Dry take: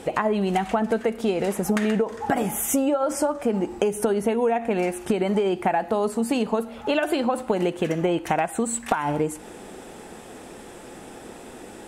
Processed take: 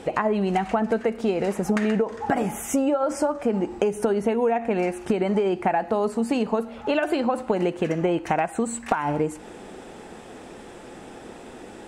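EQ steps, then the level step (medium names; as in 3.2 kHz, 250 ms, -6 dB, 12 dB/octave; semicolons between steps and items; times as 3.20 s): dynamic bell 3.4 kHz, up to -6 dB, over -54 dBFS, Q 5; peaking EQ 13 kHz -12.5 dB 0.93 oct; 0.0 dB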